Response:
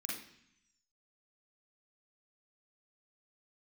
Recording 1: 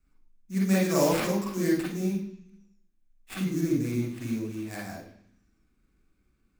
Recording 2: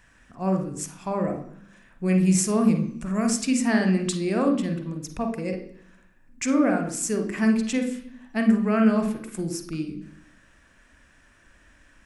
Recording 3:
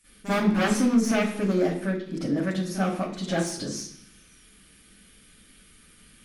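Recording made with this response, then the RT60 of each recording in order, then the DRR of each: 1; 0.70 s, 0.70 s, 0.65 s; -5.0 dB, 5.0 dB, -14.5 dB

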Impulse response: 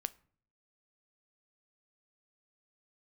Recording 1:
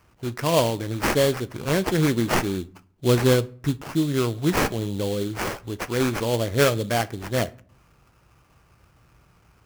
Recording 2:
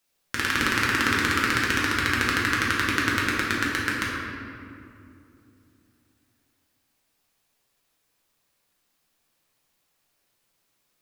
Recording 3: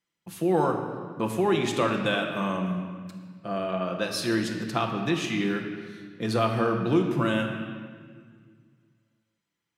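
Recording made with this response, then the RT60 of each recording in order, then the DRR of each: 1; 0.50 s, 2.6 s, 1.7 s; 14.5 dB, -5.5 dB, 1.5 dB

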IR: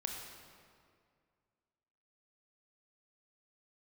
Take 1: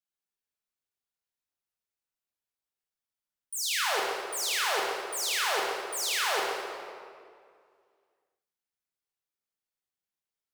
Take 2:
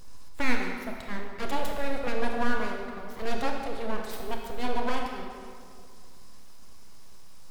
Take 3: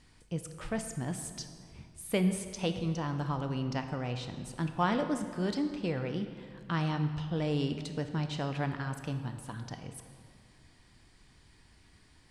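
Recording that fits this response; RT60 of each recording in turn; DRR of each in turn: 2; 2.1 s, 2.1 s, 2.1 s; -3.5 dB, 1.5 dB, 7.5 dB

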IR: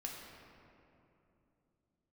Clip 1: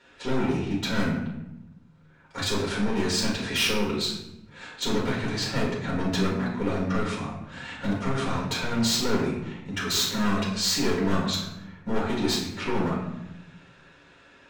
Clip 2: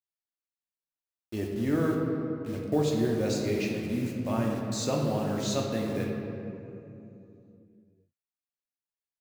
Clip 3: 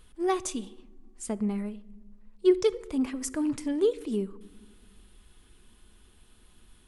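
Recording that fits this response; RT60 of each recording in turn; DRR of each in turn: 2; 0.95 s, 2.9 s, no single decay rate; -6.0 dB, -2.0 dB, 14.5 dB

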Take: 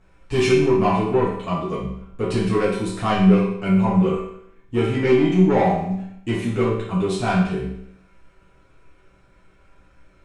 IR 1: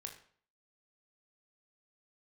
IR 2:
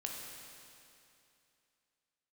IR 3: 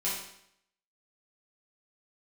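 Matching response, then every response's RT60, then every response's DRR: 3; 0.50 s, 2.7 s, 0.70 s; 3.0 dB, -1.0 dB, -9.5 dB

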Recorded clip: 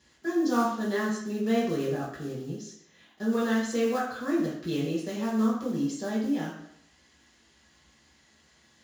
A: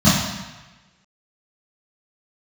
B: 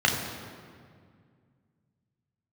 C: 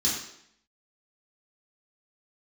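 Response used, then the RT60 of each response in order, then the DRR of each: C; 1.2 s, 2.1 s, 0.70 s; -14.0 dB, -0.5 dB, -7.5 dB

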